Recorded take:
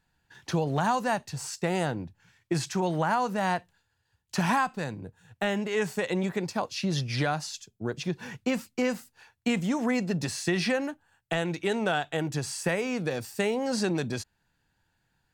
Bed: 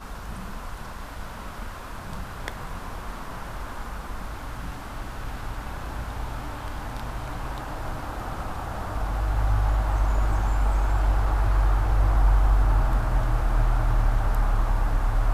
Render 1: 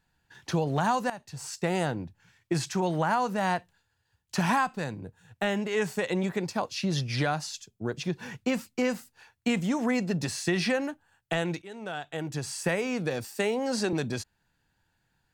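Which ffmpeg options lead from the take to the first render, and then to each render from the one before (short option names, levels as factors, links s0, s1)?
-filter_complex "[0:a]asettb=1/sr,asplit=3[s0][s1][s2];[s0]atrim=end=13.244[s3];[s1]atrim=start=13.24:end=13.93,asetpts=PTS-STARTPTS,afade=t=in:d=0.004:c=qsin,afade=t=out:st=0.686:d=0.004:c=qsin,highpass=f=200:w=0.5412,highpass=f=200:w=1.3066[s4];[s2]atrim=start=13.926[s5];[s3][s4]acrossfade=d=0.004:c1=hsin:c2=qsin[s6];[s6][s5]acrossfade=d=0.004:c1=qsin:c2=hsin,asplit=3[s7][s8][s9];[s7]atrim=end=1.1,asetpts=PTS-STARTPTS,afade=t=out:st=1.096:d=0.004:c=hsin:silence=0.158489[s10];[s8]atrim=start=1.1:end=11.62,asetpts=PTS-STARTPTS,afade=t=in:d=0.5:silence=0.158489,afade=t=out:st=10.516:d=0.004:c=hsin:silence=0.1[s11];[s9]atrim=start=11.62,asetpts=PTS-STARTPTS,afade=t=in:d=1.04:silence=0.1[s12];[s10][s11][s12]concat=n=3:v=0:a=1"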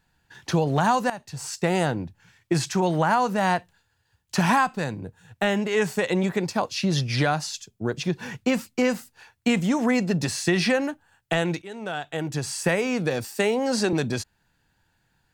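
-af "volume=1.78"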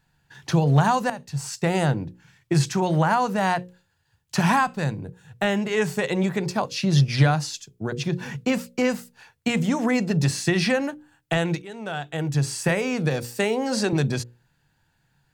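-af "equalizer=f=140:w=4.1:g=10,bandreject=f=60:t=h:w=6,bandreject=f=120:t=h:w=6,bandreject=f=180:t=h:w=6,bandreject=f=240:t=h:w=6,bandreject=f=300:t=h:w=6,bandreject=f=360:t=h:w=6,bandreject=f=420:t=h:w=6,bandreject=f=480:t=h:w=6,bandreject=f=540:t=h:w=6"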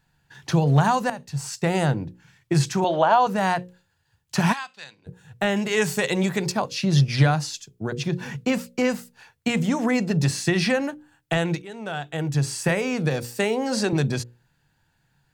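-filter_complex "[0:a]asettb=1/sr,asplit=3[s0][s1][s2];[s0]atrim=end=2.844[s3];[s1]atrim=start=2.84:end=3.27,asetpts=PTS-STARTPTS,afade=t=in:d=0.004:c=qsin,afade=t=out:st=0.426:d=0.004:c=qsin,highpass=330,equalizer=f=400:t=q:w=4:g=4,equalizer=f=660:t=q:w=4:g=9,equalizer=f=990:t=q:w=4:g=3,equalizer=f=2000:t=q:w=4:g=-8,equalizer=f=3300:t=q:w=4:g=10,equalizer=f=5200:t=q:w=4:g=-8,lowpass=f=5800:w=0.5412,lowpass=f=5800:w=1.3066[s4];[s2]atrim=start=3.266[s5];[s3][s4]acrossfade=d=0.004:c1=hsin:c2=qsin[s6];[s6][s5]acrossfade=d=0.004:c1=qsin:c2=hsin,asplit=3[s7][s8][s9];[s7]afade=t=out:st=4.52:d=0.02[s10];[s8]bandpass=f=3700:t=q:w=1.5,afade=t=in:st=4.52:d=0.02,afade=t=out:st=5.06:d=0.02[s11];[s9]afade=t=in:st=5.06:d=0.02[s12];[s10][s11][s12]amix=inputs=3:normalize=0,asettb=1/sr,asplit=3[s13][s14][s15];[s13]atrim=end=5.564[s16];[s14]atrim=start=5.56:end=6.52,asetpts=PTS-STARTPTS,afade=t=in:d=0.004:c=qsin,afade=t=out:st=0.956:d=0.004:c=qsin,highshelf=f=2700:g=8[s17];[s15]atrim=start=6.516[s18];[s16][s17]acrossfade=d=0.004:c1=hsin:c2=qsin[s19];[s19][s18]acrossfade=d=0.004:c1=qsin:c2=hsin"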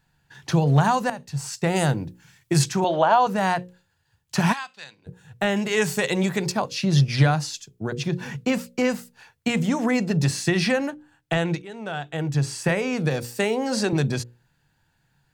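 -filter_complex "[0:a]asettb=1/sr,asplit=3[s0][s1][s2];[s0]atrim=end=1.764[s3];[s1]atrim=start=1.76:end=2.64,asetpts=PTS-STARTPTS,afade=t=in:d=0.004:c=qsin,afade=t=out:st=0.876:d=0.004:c=qsin,highshelf=f=5500:g=11[s4];[s2]atrim=start=2.636[s5];[s3][s4]acrossfade=d=0.004:c1=hsin:c2=qsin[s6];[s6][s5]acrossfade=d=0.004:c1=qsin:c2=hsin,asettb=1/sr,asplit=3[s7][s8][s9];[s7]atrim=end=10.904[s10];[s8]atrim=start=10.9:end=12.93,asetpts=PTS-STARTPTS,afade=t=in:d=0.004:c=qsin,afade=t=out:st=2.026:d=0.004:c=qsin,highshelf=f=8000:g=-6.5[s11];[s9]atrim=start=12.926[s12];[s10][s11]acrossfade=d=0.004:c1=hsin:c2=qsin[s13];[s13][s12]acrossfade=d=0.004:c1=qsin:c2=hsin"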